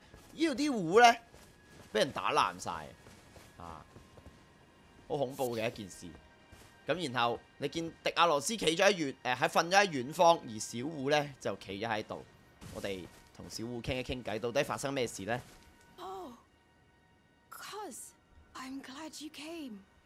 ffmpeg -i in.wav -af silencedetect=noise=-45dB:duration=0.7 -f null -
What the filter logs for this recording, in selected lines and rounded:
silence_start: 4.28
silence_end: 5.10 | silence_duration: 0.82
silence_start: 16.34
silence_end: 17.52 | silence_duration: 1.18